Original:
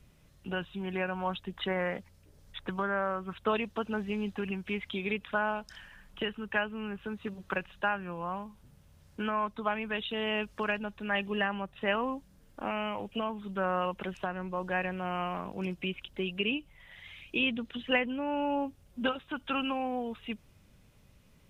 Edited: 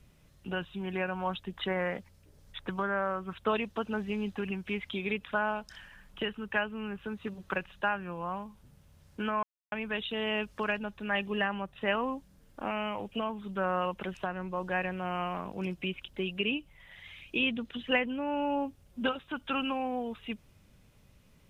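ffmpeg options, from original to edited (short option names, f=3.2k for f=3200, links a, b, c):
-filter_complex "[0:a]asplit=3[a][b][c];[a]atrim=end=9.43,asetpts=PTS-STARTPTS,afade=t=out:st=9.426:d=0.004:c=hsin[d];[b]atrim=start=9.43:end=9.72,asetpts=PTS-STARTPTS,volume=0[e];[c]atrim=start=9.72,asetpts=PTS-STARTPTS,afade=t=in:d=0.004:c=hsin[f];[d][e][f]concat=n=3:v=0:a=1"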